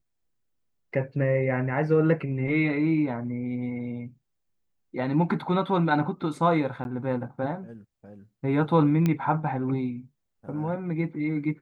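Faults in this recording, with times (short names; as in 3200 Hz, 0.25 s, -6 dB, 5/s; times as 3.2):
6.84–6.85 gap
9.06 pop -13 dBFS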